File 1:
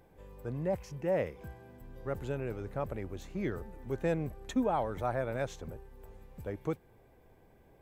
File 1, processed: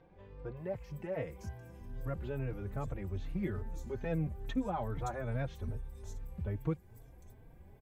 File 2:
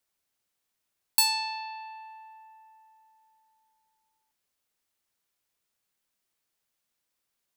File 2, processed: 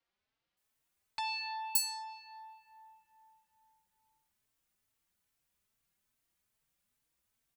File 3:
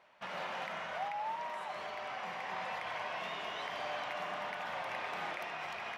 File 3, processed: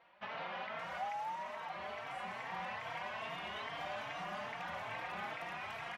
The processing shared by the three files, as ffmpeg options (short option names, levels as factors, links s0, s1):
-filter_complex "[0:a]asplit=2[s0][s1];[s1]acompressor=threshold=0.01:ratio=6,volume=1.26[s2];[s0][s2]amix=inputs=2:normalize=0,acrossover=split=4700[s3][s4];[s4]adelay=570[s5];[s3][s5]amix=inputs=2:normalize=0,asubboost=boost=2.5:cutoff=230,asplit=2[s6][s7];[s7]adelay=3.9,afreqshift=2.4[s8];[s6][s8]amix=inputs=2:normalize=1,volume=0.596"